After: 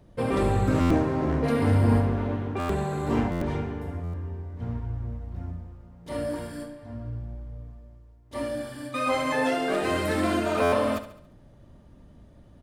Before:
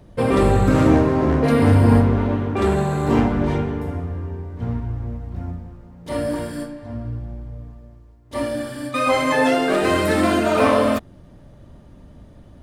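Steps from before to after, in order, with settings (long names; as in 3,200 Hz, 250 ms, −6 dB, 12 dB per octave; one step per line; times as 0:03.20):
on a send: repeating echo 70 ms, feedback 48%, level −12.5 dB
on the sum: buffer that repeats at 0:00.80/0:02.59/0:03.31/0:04.03/0:10.62, samples 512, times 8
level −7.5 dB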